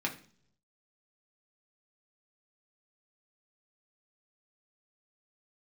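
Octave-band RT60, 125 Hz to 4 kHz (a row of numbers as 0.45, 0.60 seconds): 1.0, 0.75, 0.65, 0.45, 0.45, 0.50 seconds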